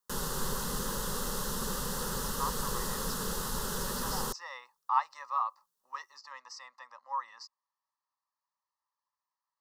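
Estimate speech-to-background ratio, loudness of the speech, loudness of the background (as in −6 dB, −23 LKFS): −3.5 dB, −38.0 LKFS, −34.5 LKFS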